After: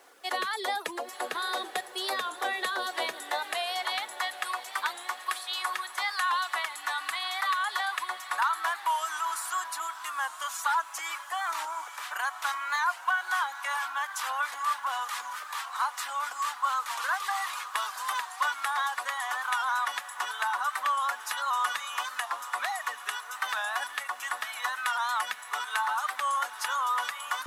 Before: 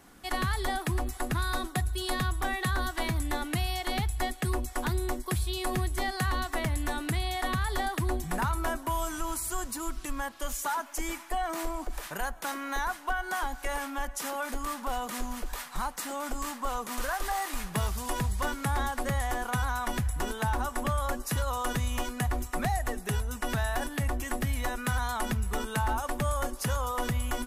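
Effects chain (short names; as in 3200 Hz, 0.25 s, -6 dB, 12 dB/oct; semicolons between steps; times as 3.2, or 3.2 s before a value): weighting filter A; reverb removal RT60 0.54 s; dynamic EQ 3600 Hz, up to +4 dB, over -51 dBFS, Q 2.2; high-pass sweep 460 Hz -> 1100 Hz, 2.98–4.06; bit-crush 11-bit; on a send: diffused feedback echo 0.906 s, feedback 48%, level -12 dB; on the sum: record warp 45 rpm, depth 100 cents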